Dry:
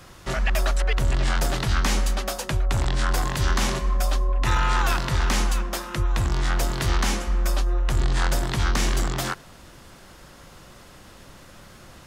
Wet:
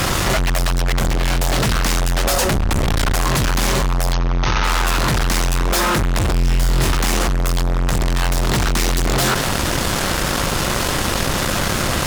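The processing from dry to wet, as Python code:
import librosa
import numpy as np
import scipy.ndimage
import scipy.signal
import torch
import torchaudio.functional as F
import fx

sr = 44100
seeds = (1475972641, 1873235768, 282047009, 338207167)

y = fx.octave_divider(x, sr, octaves=2, level_db=-1.0, at=(2.31, 3.15))
y = fx.rider(y, sr, range_db=10, speed_s=0.5)
y = fx.fuzz(y, sr, gain_db=38.0, gate_db=-47.0)
y = fx.brickwall_lowpass(y, sr, high_hz=6600.0, at=(4.12, 4.63), fade=0.02)
y = fx.room_flutter(y, sr, wall_m=4.0, rt60_s=0.34, at=(6.31, 6.92))
y = fx.env_flatten(y, sr, amount_pct=70)
y = F.gain(torch.from_numpy(y), -8.0).numpy()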